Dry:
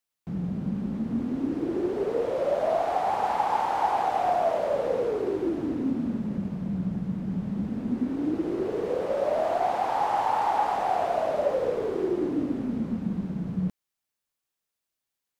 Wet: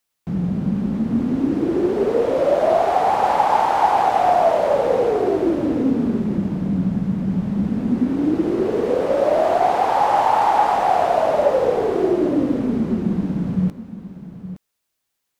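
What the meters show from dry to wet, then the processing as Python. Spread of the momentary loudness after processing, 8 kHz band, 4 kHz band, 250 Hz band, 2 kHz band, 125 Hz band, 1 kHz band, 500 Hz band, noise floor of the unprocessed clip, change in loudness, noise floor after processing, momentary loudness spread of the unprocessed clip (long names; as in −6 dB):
6 LU, can't be measured, +8.5 dB, +8.5 dB, +8.5 dB, +8.5 dB, +8.5 dB, +8.5 dB, below −85 dBFS, +8.5 dB, −77 dBFS, 6 LU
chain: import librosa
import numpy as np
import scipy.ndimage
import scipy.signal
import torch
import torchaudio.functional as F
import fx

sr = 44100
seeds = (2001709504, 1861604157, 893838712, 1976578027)

y = x + 10.0 ** (-13.0 / 20.0) * np.pad(x, (int(866 * sr / 1000.0), 0))[:len(x)]
y = y * librosa.db_to_amplitude(8.5)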